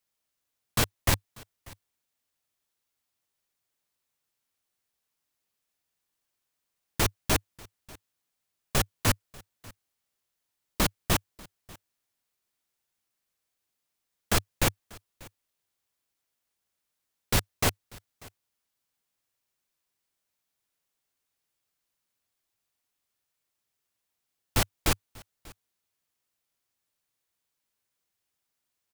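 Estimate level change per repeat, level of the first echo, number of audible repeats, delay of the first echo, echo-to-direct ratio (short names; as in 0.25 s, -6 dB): no steady repeat, -23.5 dB, 1, 0.591 s, -23.5 dB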